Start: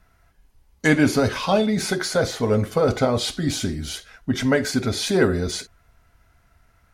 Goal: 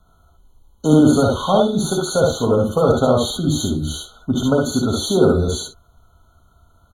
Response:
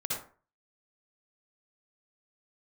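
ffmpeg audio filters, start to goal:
-filter_complex "[0:a]acrossover=split=310|1200|5000[a][b][c][d];[c]asoftclip=type=tanh:threshold=-27.5dB[e];[a][b][e][d]amix=inputs=4:normalize=0,aecho=1:1:59|72:0.668|0.668,afftfilt=real='re*eq(mod(floor(b*sr/1024/1500),2),0)':imag='im*eq(mod(floor(b*sr/1024/1500),2),0)':win_size=1024:overlap=0.75,volume=2.5dB"

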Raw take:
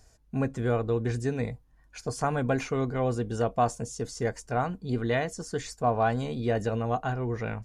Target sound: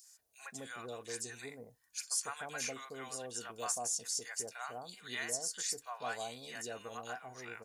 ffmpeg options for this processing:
-filter_complex "[0:a]aderivative,acrossover=split=800|2700[a][b][c];[b]adelay=40[d];[a]adelay=190[e];[e][d][c]amix=inputs=3:normalize=0,volume=7dB"

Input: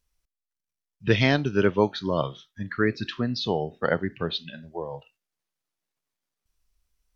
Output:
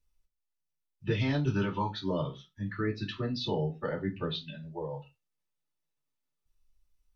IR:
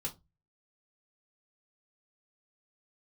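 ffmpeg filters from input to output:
-filter_complex "[0:a]asettb=1/sr,asplit=3[a][b][c];[a]atrim=end=1.474[d];[b]atrim=start=1.47:end=1.9,asetpts=PTS-STARTPTS,afade=t=in:d=0.004:c=qsin,afade=t=out:st=0.426:d=0.004:c=qsin,equalizer=f=125:t=o:w=1:g=7,equalizer=f=500:t=o:w=1:g=-5,equalizer=f=1k:t=o:w=1:g=12,equalizer=f=4k:t=o:w=1:g=10[e];[c]atrim=start=1.896[f];[d][e]acrossfade=d=0.004:c1=hsin:c2=qsin[g];[g][f]acrossfade=d=0.004:c1=qsin:c2=hsin,alimiter=limit=-14.5dB:level=0:latency=1:release=141[h];[1:a]atrim=start_sample=2205,atrim=end_sample=6174[i];[h][i]afir=irnorm=-1:irlink=0,volume=-6dB"

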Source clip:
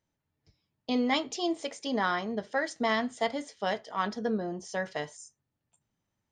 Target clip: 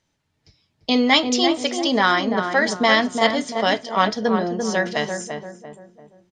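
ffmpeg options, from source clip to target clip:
-filter_complex "[0:a]lowpass=4.5k,crystalizer=i=4:c=0,asplit=2[a][b];[b]adelay=342,lowpass=f=1.1k:p=1,volume=-4.5dB,asplit=2[c][d];[d]adelay=342,lowpass=f=1.1k:p=1,volume=0.44,asplit=2[e][f];[f]adelay=342,lowpass=f=1.1k:p=1,volume=0.44,asplit=2[g][h];[h]adelay=342,lowpass=f=1.1k:p=1,volume=0.44,asplit=2[i][j];[j]adelay=342,lowpass=f=1.1k:p=1,volume=0.44[k];[c][e][g][i][k]amix=inputs=5:normalize=0[l];[a][l]amix=inputs=2:normalize=0,volume=9dB"

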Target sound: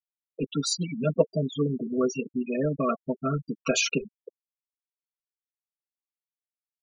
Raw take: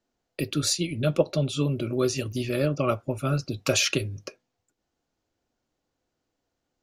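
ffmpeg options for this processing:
-af "highshelf=f=2.5k:g=-2.5,aecho=1:1:4.4:0.99,afftfilt=real='re*gte(hypot(re,im),0.1)':imag='im*gte(hypot(re,im),0.1)':win_size=1024:overlap=0.75,volume=-2dB"

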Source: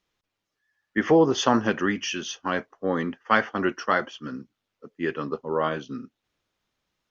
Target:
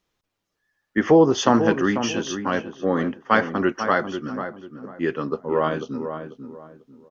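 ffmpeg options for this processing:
-filter_complex "[0:a]equalizer=f=2.6k:w=0.56:g=-4,asplit=2[a][b];[b]adelay=493,lowpass=f=1.3k:p=1,volume=-8dB,asplit=2[c][d];[d]adelay=493,lowpass=f=1.3k:p=1,volume=0.3,asplit=2[e][f];[f]adelay=493,lowpass=f=1.3k:p=1,volume=0.3,asplit=2[g][h];[h]adelay=493,lowpass=f=1.3k:p=1,volume=0.3[i];[a][c][e][g][i]amix=inputs=5:normalize=0,volume=4dB"

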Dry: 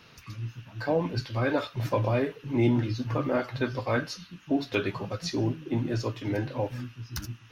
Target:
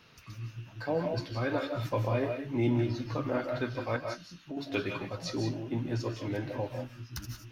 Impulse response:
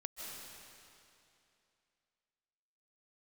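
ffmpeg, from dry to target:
-filter_complex "[0:a]asettb=1/sr,asplit=3[a][b][c];[a]atrim=end=3.964[d];[b]atrim=start=3.96:end=4.57,asetpts=PTS-STARTPTS,afade=t=in:d=0.004:c=qsin,afade=t=out:st=0.606:d=0.004:c=qsin,acompressor=threshold=-38dB:ratio=2.5[e];[c]atrim=start=4.566[f];[d][e]acrossfade=d=0.004:c1=hsin:c2=qsin[g];[g][f]acrossfade=d=0.004:c1=qsin:c2=hsin[h];[1:a]atrim=start_sample=2205,afade=t=out:st=0.24:d=0.01,atrim=end_sample=11025[i];[h][i]afir=irnorm=-1:irlink=0"

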